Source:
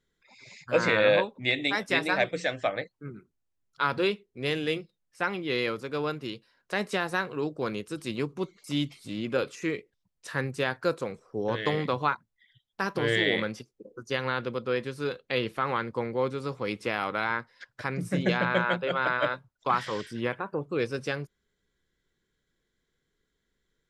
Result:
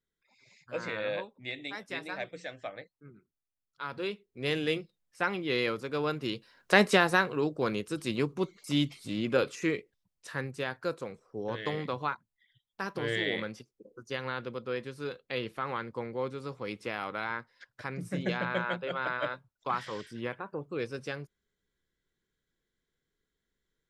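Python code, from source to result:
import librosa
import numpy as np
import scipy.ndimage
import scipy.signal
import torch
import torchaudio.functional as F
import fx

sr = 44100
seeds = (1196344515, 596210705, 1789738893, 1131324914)

y = fx.gain(x, sr, db=fx.line((3.83, -12.0), (4.54, -1.0), (6.03, -1.0), (6.74, 8.5), (7.42, 1.0), (9.63, 1.0), (10.51, -6.0)))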